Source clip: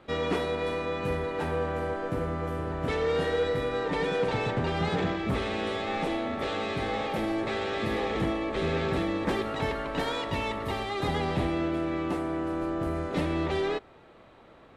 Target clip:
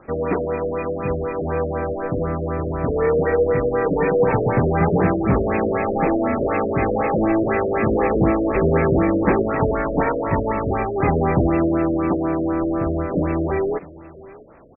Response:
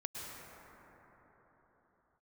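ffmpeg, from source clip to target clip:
-af "aecho=1:1:653:0.106,dynaudnorm=f=400:g=17:m=1.68,afftfilt=real='re*lt(b*sr/1024,640*pow(2700/640,0.5+0.5*sin(2*PI*4*pts/sr)))':imag='im*lt(b*sr/1024,640*pow(2700/640,0.5+0.5*sin(2*PI*4*pts/sr)))':win_size=1024:overlap=0.75,volume=2.24"

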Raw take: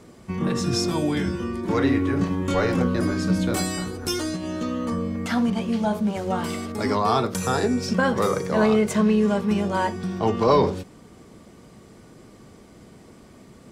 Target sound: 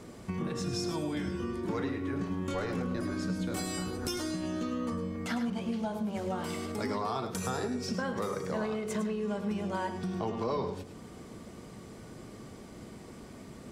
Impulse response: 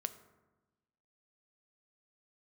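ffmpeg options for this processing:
-filter_complex "[0:a]acompressor=threshold=0.0224:ratio=4,asplit=2[s0][s1];[1:a]atrim=start_sample=2205,adelay=105[s2];[s1][s2]afir=irnorm=-1:irlink=0,volume=0.376[s3];[s0][s3]amix=inputs=2:normalize=0"

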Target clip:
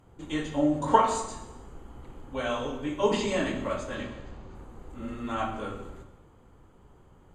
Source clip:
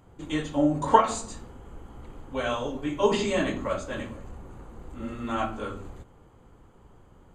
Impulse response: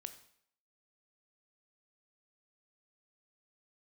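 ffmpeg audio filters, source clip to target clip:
-filter_complex "[0:a]asettb=1/sr,asplit=3[s0][s1][s2];[s0]atrim=end=3.954[s3];[s1]atrim=start=3.95:end=4.55,asetpts=PTS-STARTPTS,afade=t=in:d=0.004:c=qsin,afade=t=out:st=0.596:d=0.004:c=qsin,lowpass=f=4900:t=q:w=2.2[s4];[s2]atrim=start=4.546[s5];[s3][s4]acrossfade=d=0.004:c1=hsin:c2=qsin[s6];[s6][s5]acrossfade=d=0.004:c1=qsin:c2=hsin[s7];[1:a]atrim=start_sample=2205,asetrate=26901,aresample=44100[s8];[s7][s8]afir=irnorm=-1:irlink=0"

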